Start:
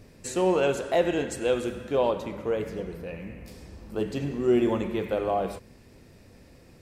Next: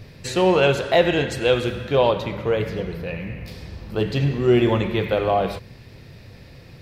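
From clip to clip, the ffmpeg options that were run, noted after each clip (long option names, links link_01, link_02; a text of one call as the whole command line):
ffmpeg -i in.wav -af "equalizer=frequency=125:width_type=o:width=1:gain=9,equalizer=frequency=250:width_type=o:width=1:gain=-5,equalizer=frequency=2000:width_type=o:width=1:gain=3,equalizer=frequency=4000:width_type=o:width=1:gain=8,equalizer=frequency=8000:width_type=o:width=1:gain=-9,volume=6.5dB" out.wav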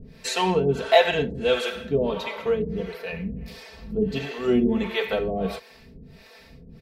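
ffmpeg -i in.wav -filter_complex "[0:a]aecho=1:1:4.5:0.93,acrossover=split=440[link_01][link_02];[link_01]aeval=exprs='val(0)*(1-1/2+1/2*cos(2*PI*1.5*n/s))':channel_layout=same[link_03];[link_02]aeval=exprs='val(0)*(1-1/2-1/2*cos(2*PI*1.5*n/s))':channel_layout=same[link_04];[link_03][link_04]amix=inputs=2:normalize=0" out.wav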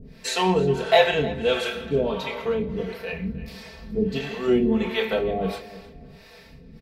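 ffmpeg -i in.wav -filter_complex "[0:a]asplit=2[link_01][link_02];[link_02]adelay=27,volume=-7dB[link_03];[link_01][link_03]amix=inputs=2:normalize=0,asplit=2[link_04][link_05];[link_05]adelay=310,lowpass=frequency=4300:poles=1,volume=-16.5dB,asplit=2[link_06][link_07];[link_07]adelay=310,lowpass=frequency=4300:poles=1,volume=0.35,asplit=2[link_08][link_09];[link_09]adelay=310,lowpass=frequency=4300:poles=1,volume=0.35[link_10];[link_04][link_06][link_08][link_10]amix=inputs=4:normalize=0" out.wav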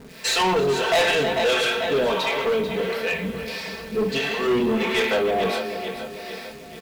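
ffmpeg -i in.wav -filter_complex "[0:a]aecho=1:1:442|884|1326|1768|2210:0.224|0.114|0.0582|0.0297|0.0151,asplit=2[link_01][link_02];[link_02]highpass=frequency=720:poles=1,volume=26dB,asoftclip=type=tanh:threshold=-3.5dB[link_03];[link_01][link_03]amix=inputs=2:normalize=0,lowpass=frequency=6600:poles=1,volume=-6dB,acrusher=bits=7:dc=4:mix=0:aa=0.000001,volume=-8.5dB" out.wav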